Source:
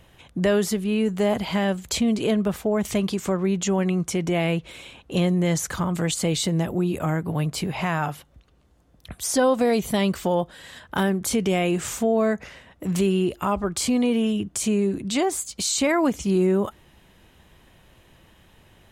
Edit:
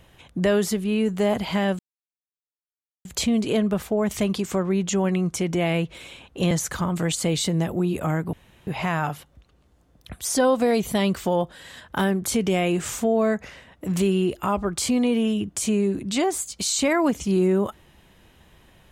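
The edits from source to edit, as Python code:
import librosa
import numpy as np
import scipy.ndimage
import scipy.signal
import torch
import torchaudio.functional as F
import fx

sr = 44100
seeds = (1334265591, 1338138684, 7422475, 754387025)

y = fx.edit(x, sr, fx.insert_silence(at_s=1.79, length_s=1.26),
    fx.cut(start_s=5.25, length_s=0.25),
    fx.room_tone_fill(start_s=7.32, length_s=0.34), tone=tone)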